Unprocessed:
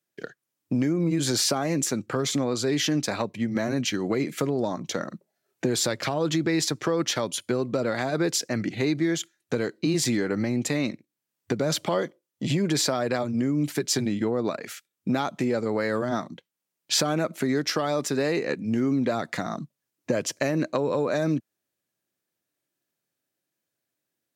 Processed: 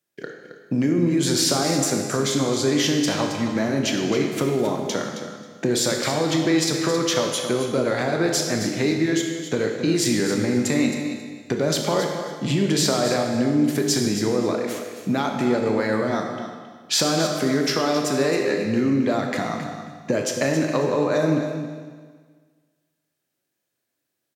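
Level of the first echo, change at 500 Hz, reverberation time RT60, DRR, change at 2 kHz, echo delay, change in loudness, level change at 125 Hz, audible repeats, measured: -10.5 dB, +4.5 dB, 1.6 s, 1.5 dB, +4.5 dB, 0.269 s, +4.0 dB, +3.5 dB, 2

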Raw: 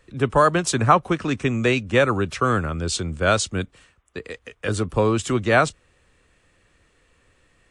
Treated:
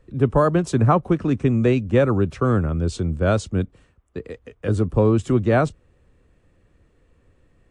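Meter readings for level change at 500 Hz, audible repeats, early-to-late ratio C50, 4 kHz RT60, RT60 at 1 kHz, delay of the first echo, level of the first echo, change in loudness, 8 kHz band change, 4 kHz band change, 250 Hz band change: +1.0 dB, none, none, none, none, none, none, +1.0 dB, -11.5 dB, -10.5 dB, +4.0 dB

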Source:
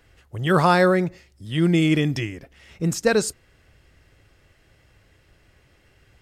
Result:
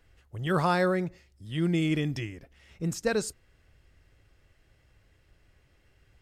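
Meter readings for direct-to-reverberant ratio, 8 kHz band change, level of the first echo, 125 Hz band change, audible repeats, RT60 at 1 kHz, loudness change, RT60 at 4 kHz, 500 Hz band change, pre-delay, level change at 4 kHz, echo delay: none, -8.5 dB, none, -7.5 dB, none, none, -8.0 dB, none, -8.5 dB, none, -8.5 dB, none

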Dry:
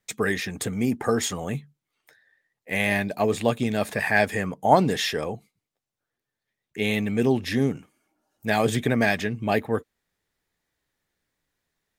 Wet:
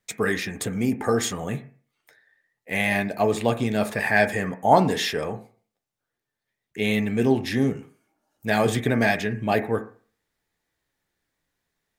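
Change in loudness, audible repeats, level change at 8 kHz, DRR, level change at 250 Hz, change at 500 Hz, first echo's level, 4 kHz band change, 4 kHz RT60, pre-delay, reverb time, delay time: +1.0 dB, none, 0.0 dB, 7.0 dB, +1.0 dB, +1.0 dB, none, 0.0 dB, 0.40 s, 10 ms, 0.40 s, none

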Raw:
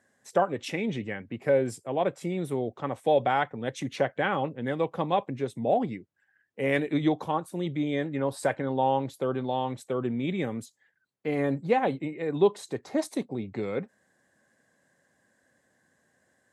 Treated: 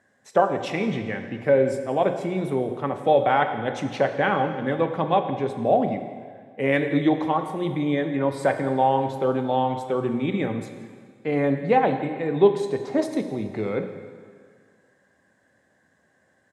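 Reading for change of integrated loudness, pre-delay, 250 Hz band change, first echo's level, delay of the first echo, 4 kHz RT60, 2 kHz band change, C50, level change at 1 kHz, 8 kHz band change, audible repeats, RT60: +5.0 dB, 5 ms, +5.0 dB, -19.0 dB, 0.169 s, 1.8 s, +4.5 dB, 8.5 dB, +6.0 dB, n/a, 1, 1.9 s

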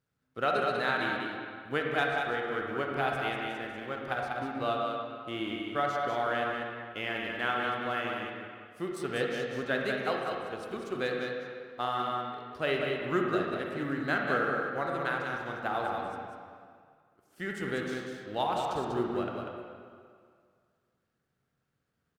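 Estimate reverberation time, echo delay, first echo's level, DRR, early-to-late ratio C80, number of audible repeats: 2.0 s, 0.193 s, -5.0 dB, -1.5 dB, 0.0 dB, 1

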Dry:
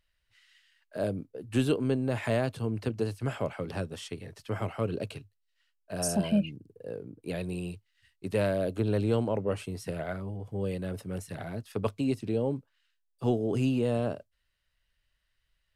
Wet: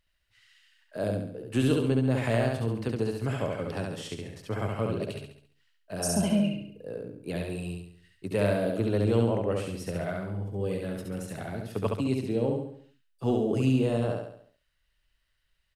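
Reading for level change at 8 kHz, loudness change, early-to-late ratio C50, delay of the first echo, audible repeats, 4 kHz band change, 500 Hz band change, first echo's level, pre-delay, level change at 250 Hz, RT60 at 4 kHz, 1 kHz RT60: +2.0 dB, +2.0 dB, none, 69 ms, 5, +2.0 dB, +2.0 dB, -3.0 dB, none, +2.0 dB, none, none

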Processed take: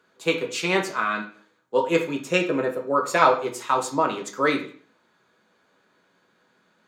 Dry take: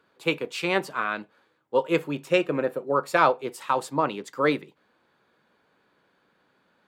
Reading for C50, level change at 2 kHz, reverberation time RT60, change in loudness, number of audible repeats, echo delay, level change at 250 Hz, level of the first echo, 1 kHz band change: 10.0 dB, +2.5 dB, 0.45 s, +2.5 dB, none, none, +2.0 dB, none, +2.5 dB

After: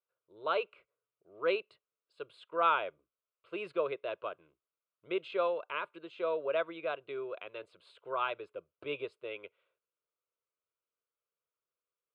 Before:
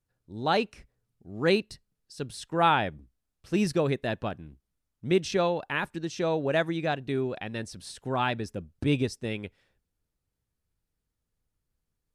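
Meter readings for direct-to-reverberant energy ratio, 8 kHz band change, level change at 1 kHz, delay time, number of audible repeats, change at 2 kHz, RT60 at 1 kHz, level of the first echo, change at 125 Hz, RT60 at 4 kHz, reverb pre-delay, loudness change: none, under -30 dB, -6.0 dB, none, none, -7.5 dB, none, none, -28.5 dB, none, none, -7.0 dB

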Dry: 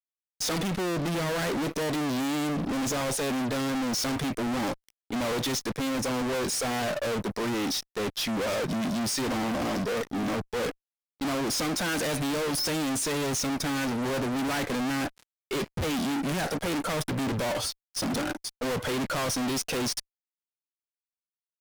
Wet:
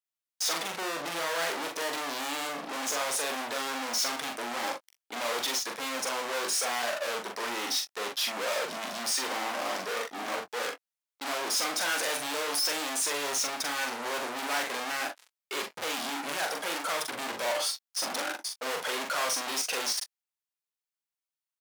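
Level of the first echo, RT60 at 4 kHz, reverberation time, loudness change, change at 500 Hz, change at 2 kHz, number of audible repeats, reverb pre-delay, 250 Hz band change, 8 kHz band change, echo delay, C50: -4.0 dB, none, none, -1.5 dB, -4.5 dB, +1.5 dB, 1, none, -14.5 dB, +1.5 dB, 42 ms, none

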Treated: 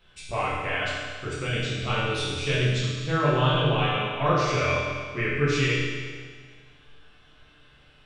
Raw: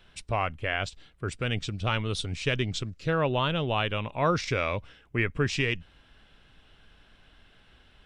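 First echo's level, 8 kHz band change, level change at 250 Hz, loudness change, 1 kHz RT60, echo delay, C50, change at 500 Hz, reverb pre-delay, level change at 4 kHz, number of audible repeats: none, +3.5 dB, +3.0 dB, +3.5 dB, 1.7 s, none, -1.5 dB, +3.5 dB, 7 ms, +4.0 dB, none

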